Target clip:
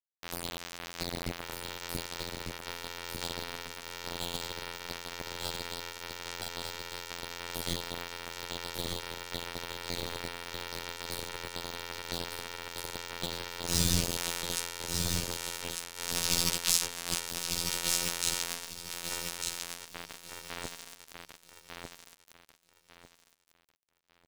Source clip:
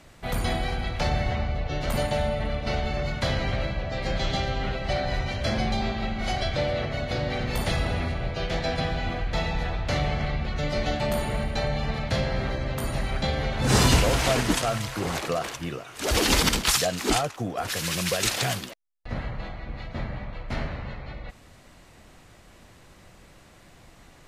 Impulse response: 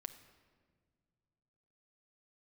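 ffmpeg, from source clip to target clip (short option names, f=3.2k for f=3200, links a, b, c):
-filter_complex "[0:a]aecho=1:1:6.2:0.7,acrossover=split=170|3400[a][b][c];[b]acompressor=threshold=-40dB:ratio=8[d];[a][d][c]amix=inputs=3:normalize=0,afftfilt=real='hypot(re,im)*cos(PI*b)':imag='0':win_size=2048:overlap=0.75,aeval=exprs='val(0)*gte(abs(val(0)),0.0447)':c=same,aecho=1:1:1198|2396|3594|4792:0.596|0.161|0.0434|0.0117"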